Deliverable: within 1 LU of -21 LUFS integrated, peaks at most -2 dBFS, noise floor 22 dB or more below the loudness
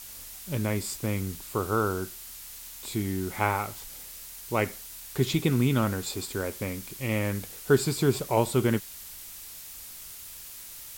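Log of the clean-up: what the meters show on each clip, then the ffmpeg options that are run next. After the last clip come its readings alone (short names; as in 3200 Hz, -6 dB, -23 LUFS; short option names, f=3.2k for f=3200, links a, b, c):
noise floor -44 dBFS; noise floor target -51 dBFS; loudness -28.5 LUFS; peak -9.0 dBFS; loudness target -21.0 LUFS
-> -af "afftdn=nr=7:nf=-44"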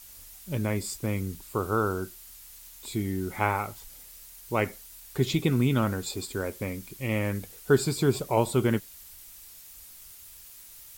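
noise floor -49 dBFS; noise floor target -51 dBFS
-> -af "afftdn=nr=6:nf=-49"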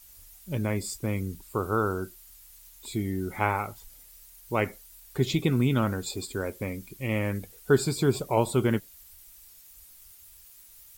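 noise floor -52 dBFS; loudness -29.0 LUFS; peak -9.0 dBFS; loudness target -21.0 LUFS
-> -af "volume=8dB,alimiter=limit=-2dB:level=0:latency=1"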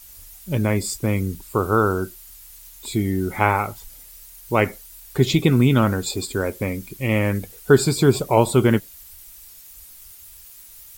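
loudness -21.0 LUFS; peak -2.0 dBFS; noise floor -44 dBFS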